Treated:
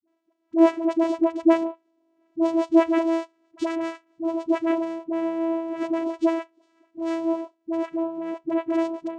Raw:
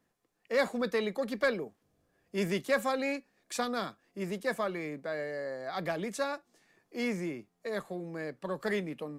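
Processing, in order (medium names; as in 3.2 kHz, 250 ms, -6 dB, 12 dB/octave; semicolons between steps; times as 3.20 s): cabinet simulation 130–6100 Hz, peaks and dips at 360 Hz +9 dB, 560 Hz +7 dB, 1.1 kHz +4 dB, 3.1 kHz +5 dB, 5.5 kHz +6 dB; vocoder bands 4, saw 329 Hz; phase dispersion highs, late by 73 ms, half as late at 420 Hz; trim +6 dB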